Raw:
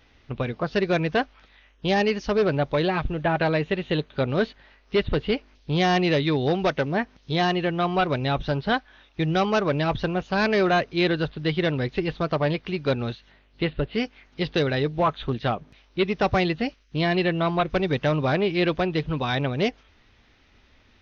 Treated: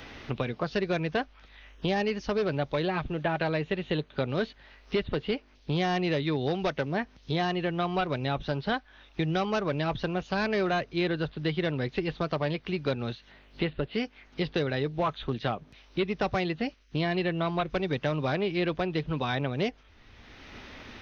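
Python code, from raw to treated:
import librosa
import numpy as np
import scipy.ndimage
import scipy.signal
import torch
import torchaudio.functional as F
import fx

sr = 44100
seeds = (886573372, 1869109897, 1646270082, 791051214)

y = fx.band_squash(x, sr, depth_pct=70)
y = F.gain(torch.from_numpy(y), -6.0).numpy()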